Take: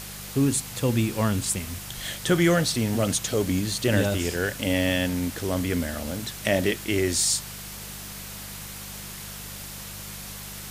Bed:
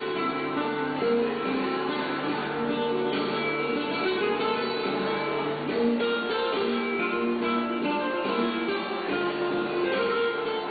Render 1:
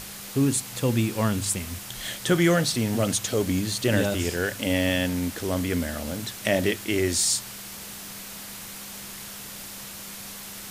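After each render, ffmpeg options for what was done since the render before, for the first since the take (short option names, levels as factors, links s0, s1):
-af "bandreject=f=50:t=h:w=4,bandreject=f=100:t=h:w=4,bandreject=f=150:t=h:w=4"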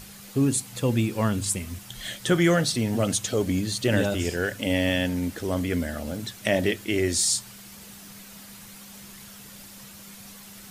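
-af "afftdn=nr=8:nf=-39"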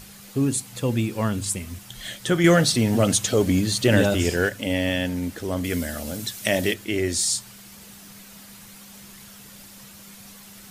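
-filter_complex "[0:a]asettb=1/sr,asplit=3[s0][s1][s2];[s0]atrim=end=2.444[s3];[s1]atrim=start=2.44:end=4.49,asetpts=PTS-STARTPTS,afade=t=in:d=0.004:c=qsin,afade=t=out:st=2.046:d=0.004:c=qsin,acontrast=24[s4];[s2]atrim=start=4.486[s5];[s3][s4]acrossfade=d=0.004:c1=hsin:c2=qsin[s6];[s6][s5]acrossfade=d=0.004:c1=qsin:c2=hsin,asettb=1/sr,asplit=3[s7][s8][s9];[s7]atrim=end=5.644[s10];[s8]atrim=start=5.64:end=6.74,asetpts=PTS-STARTPTS,afade=t=in:d=0.004:c=qsin,afade=t=out:st=1.096:d=0.004:c=qsin,highshelf=f=3800:g=10[s11];[s9]atrim=start=6.736[s12];[s10][s11]acrossfade=d=0.004:c1=hsin:c2=qsin[s13];[s13][s12]acrossfade=d=0.004:c1=qsin:c2=hsin"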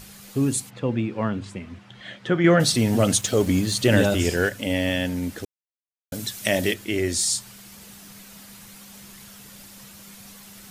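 -filter_complex "[0:a]asplit=3[s0][s1][s2];[s0]afade=t=out:st=0.69:d=0.02[s3];[s1]highpass=120,lowpass=2400,afade=t=in:st=0.69:d=0.02,afade=t=out:st=2.59:d=0.02[s4];[s2]afade=t=in:st=2.59:d=0.02[s5];[s3][s4][s5]amix=inputs=3:normalize=0,asettb=1/sr,asplit=3[s6][s7][s8];[s6]atrim=end=3.214[s9];[s7]atrim=start=3.21:end=3.75,asetpts=PTS-STARTPTS,afade=t=in:d=0.004:c=qsin,afade=t=out:st=0.536:d=0.004:c=qsin,aeval=exprs='sgn(val(0))*max(abs(val(0))-0.00794,0)':c=same[s10];[s8]atrim=start=3.746[s11];[s9][s10]acrossfade=d=0.004:c1=hsin:c2=qsin[s12];[s12][s11]acrossfade=d=0.004:c1=qsin:c2=hsin,asplit=3[s13][s14][s15];[s13]atrim=end=5.45,asetpts=PTS-STARTPTS,afade=t=out:st=5.446:d=0.004:c=hsin[s16];[s14]atrim=start=5.45:end=6.12,asetpts=PTS-STARTPTS,volume=0[s17];[s15]atrim=start=6.12,asetpts=PTS-STARTPTS,afade=t=in:d=0.004:c=hsin[s18];[s16][s17][s18]concat=n=3:v=0:a=1"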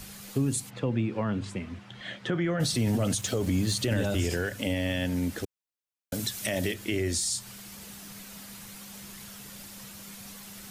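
-filter_complex "[0:a]alimiter=limit=0.188:level=0:latency=1:release=20,acrossover=split=140[s0][s1];[s1]acompressor=threshold=0.0447:ratio=4[s2];[s0][s2]amix=inputs=2:normalize=0"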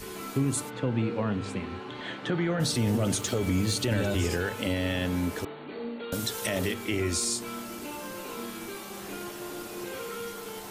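-filter_complex "[1:a]volume=0.251[s0];[0:a][s0]amix=inputs=2:normalize=0"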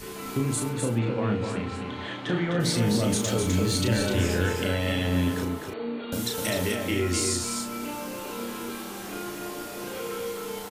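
-filter_complex "[0:a]asplit=2[s0][s1];[s1]adelay=34,volume=0.596[s2];[s0][s2]amix=inputs=2:normalize=0,asplit=2[s3][s4];[s4]aecho=0:1:254:0.562[s5];[s3][s5]amix=inputs=2:normalize=0"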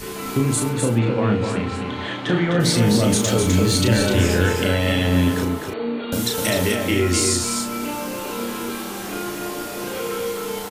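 -af "volume=2.24"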